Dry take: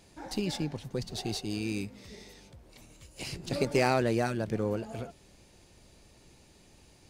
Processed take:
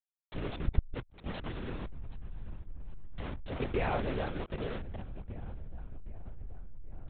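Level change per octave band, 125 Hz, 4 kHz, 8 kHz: −2.5 dB, −10.5 dB, below −35 dB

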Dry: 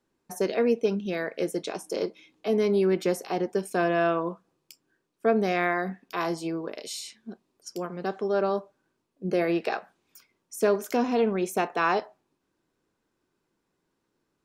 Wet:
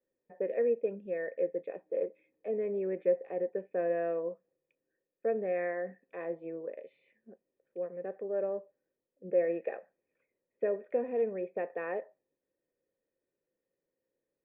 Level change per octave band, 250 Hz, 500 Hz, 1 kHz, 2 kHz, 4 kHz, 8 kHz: −13.5 dB, −5.0 dB, −15.5 dB, −13.5 dB, below −35 dB, below −35 dB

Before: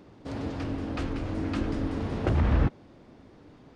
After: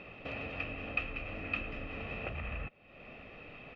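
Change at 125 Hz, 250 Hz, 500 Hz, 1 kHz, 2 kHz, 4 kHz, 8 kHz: −16.5 dB, −16.0 dB, −9.5 dB, −8.0 dB, +4.0 dB, −3.5 dB, can't be measured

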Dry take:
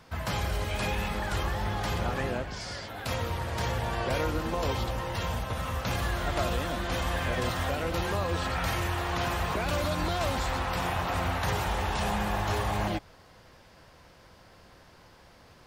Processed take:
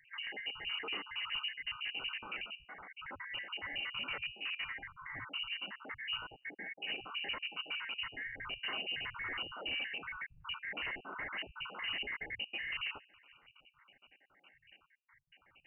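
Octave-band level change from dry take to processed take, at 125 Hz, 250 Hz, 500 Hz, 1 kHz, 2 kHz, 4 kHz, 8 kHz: −31.0 dB, −22.0 dB, −22.0 dB, −17.5 dB, −4.5 dB, −1.5 dB, below −40 dB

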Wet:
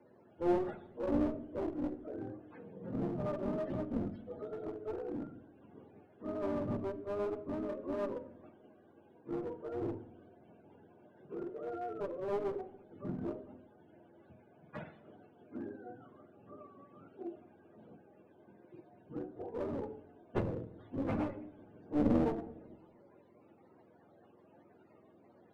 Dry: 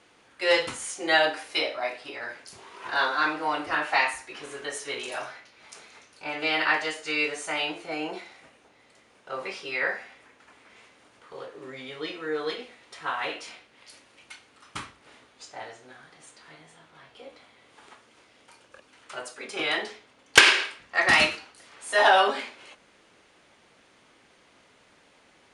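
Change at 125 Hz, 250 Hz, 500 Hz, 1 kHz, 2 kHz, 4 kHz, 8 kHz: +6.5 dB, +2.5 dB, −7.0 dB, −17.5 dB, −31.5 dB, below −35 dB, below −35 dB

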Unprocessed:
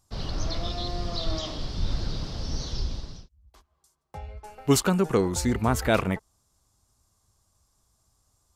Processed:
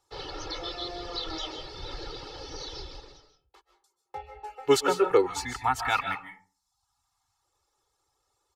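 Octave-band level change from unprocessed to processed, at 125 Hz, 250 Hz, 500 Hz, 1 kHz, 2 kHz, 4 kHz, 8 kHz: −15.5, −9.0, +1.0, +3.0, +1.0, −0.5, −5.5 decibels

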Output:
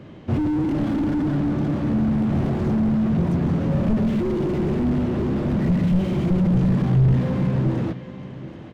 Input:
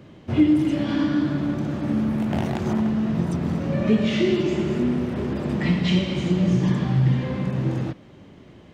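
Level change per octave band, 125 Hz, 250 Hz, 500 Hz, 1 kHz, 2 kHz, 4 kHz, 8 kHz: +3.0 dB, +1.0 dB, −0.5 dB, +1.0 dB, −5.0 dB, below −10 dB, can't be measured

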